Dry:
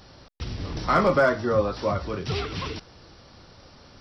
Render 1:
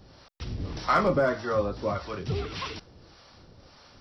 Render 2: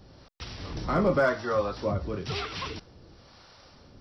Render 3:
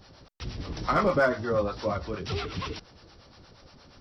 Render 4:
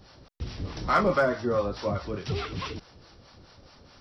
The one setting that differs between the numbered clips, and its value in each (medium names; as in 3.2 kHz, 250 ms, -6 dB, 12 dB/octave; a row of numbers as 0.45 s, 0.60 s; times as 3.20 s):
harmonic tremolo, rate: 1.7 Hz, 1 Hz, 8.5 Hz, 4.7 Hz